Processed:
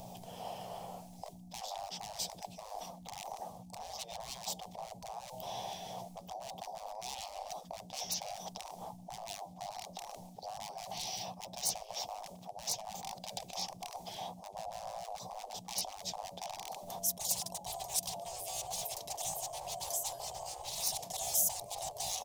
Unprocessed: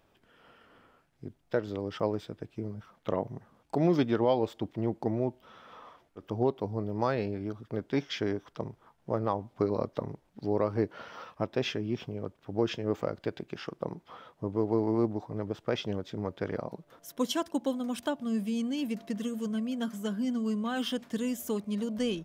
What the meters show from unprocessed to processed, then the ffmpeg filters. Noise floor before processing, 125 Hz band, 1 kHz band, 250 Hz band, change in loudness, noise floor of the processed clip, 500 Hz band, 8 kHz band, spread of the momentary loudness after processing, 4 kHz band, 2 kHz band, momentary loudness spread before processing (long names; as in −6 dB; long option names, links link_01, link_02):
−68 dBFS, −17.5 dB, −2.0 dB, −24.5 dB, −7.0 dB, −53 dBFS, −14.5 dB, +13.5 dB, 11 LU, +0.5 dB, −10.5 dB, 13 LU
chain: -af "areverse,acompressor=threshold=-39dB:ratio=16,areverse,aeval=exprs='val(0)+0.00126*(sin(2*PI*60*n/s)+sin(2*PI*2*60*n/s)/2+sin(2*PI*3*60*n/s)/3+sin(2*PI*4*60*n/s)/4+sin(2*PI*5*60*n/s)/5)':channel_layout=same,aeval=exprs='0.0119*(abs(mod(val(0)/0.0119+3,4)-2)-1)':channel_layout=same,afftfilt=real='re*lt(hypot(re,im),0.00562)':imag='im*lt(hypot(re,im),0.00562)':win_size=1024:overlap=0.75,firequalizer=gain_entry='entry(190,0);entry(270,-16);entry(740,10);entry(1400,-24);entry(2300,-11);entry(3800,-1);entry(5900,7)':delay=0.05:min_phase=1,volume=17.5dB"